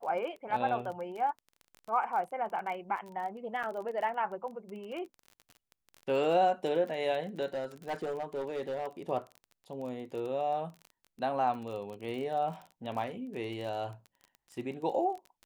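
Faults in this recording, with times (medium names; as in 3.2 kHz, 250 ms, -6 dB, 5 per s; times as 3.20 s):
crackle 27 per s -39 dBFS
3.63–3.64 s: dropout 6.4 ms
7.54–8.87 s: clipped -30.5 dBFS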